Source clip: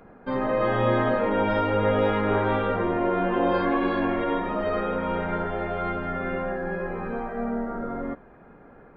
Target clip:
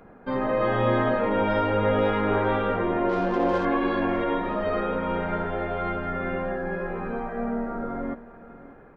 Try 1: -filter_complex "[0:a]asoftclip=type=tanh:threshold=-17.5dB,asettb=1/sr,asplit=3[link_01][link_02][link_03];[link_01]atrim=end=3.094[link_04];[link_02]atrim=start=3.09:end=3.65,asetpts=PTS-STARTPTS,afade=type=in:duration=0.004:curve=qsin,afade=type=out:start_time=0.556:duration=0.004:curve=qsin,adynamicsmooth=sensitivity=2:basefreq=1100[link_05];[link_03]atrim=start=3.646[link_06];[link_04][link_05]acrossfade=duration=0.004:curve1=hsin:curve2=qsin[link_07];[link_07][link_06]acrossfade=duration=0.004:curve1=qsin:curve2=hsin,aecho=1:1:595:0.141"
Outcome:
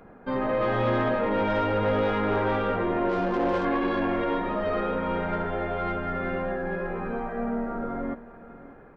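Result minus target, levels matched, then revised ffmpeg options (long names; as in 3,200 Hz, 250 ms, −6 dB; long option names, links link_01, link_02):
soft clipping: distortion +20 dB
-filter_complex "[0:a]asoftclip=type=tanh:threshold=-5.5dB,asettb=1/sr,asplit=3[link_01][link_02][link_03];[link_01]atrim=end=3.094[link_04];[link_02]atrim=start=3.09:end=3.65,asetpts=PTS-STARTPTS,afade=type=in:duration=0.004:curve=qsin,afade=type=out:start_time=0.556:duration=0.004:curve=qsin,adynamicsmooth=sensitivity=2:basefreq=1100[link_05];[link_03]atrim=start=3.646[link_06];[link_04][link_05]acrossfade=duration=0.004:curve1=hsin:curve2=qsin[link_07];[link_07][link_06]acrossfade=duration=0.004:curve1=qsin:curve2=hsin,aecho=1:1:595:0.141"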